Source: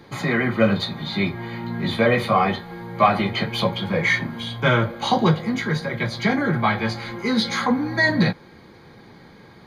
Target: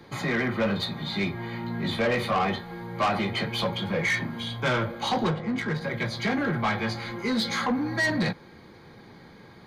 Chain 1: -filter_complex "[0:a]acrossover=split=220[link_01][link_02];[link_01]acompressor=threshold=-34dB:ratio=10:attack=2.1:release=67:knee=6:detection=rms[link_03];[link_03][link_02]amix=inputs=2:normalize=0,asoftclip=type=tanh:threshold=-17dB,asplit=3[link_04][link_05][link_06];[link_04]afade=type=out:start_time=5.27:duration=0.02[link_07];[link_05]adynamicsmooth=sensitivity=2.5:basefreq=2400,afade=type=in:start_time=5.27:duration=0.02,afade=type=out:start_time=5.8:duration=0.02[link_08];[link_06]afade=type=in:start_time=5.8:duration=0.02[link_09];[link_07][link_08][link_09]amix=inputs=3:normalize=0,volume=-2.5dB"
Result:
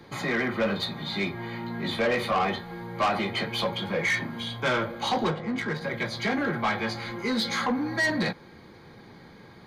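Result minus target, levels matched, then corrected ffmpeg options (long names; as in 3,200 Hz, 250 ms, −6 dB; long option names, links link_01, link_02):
downward compressor: peak gain reduction +9.5 dB
-filter_complex "[0:a]acrossover=split=220[link_01][link_02];[link_01]acompressor=threshold=-23.5dB:ratio=10:attack=2.1:release=67:knee=6:detection=rms[link_03];[link_03][link_02]amix=inputs=2:normalize=0,asoftclip=type=tanh:threshold=-17dB,asplit=3[link_04][link_05][link_06];[link_04]afade=type=out:start_time=5.27:duration=0.02[link_07];[link_05]adynamicsmooth=sensitivity=2.5:basefreq=2400,afade=type=in:start_time=5.27:duration=0.02,afade=type=out:start_time=5.8:duration=0.02[link_08];[link_06]afade=type=in:start_time=5.8:duration=0.02[link_09];[link_07][link_08][link_09]amix=inputs=3:normalize=0,volume=-2.5dB"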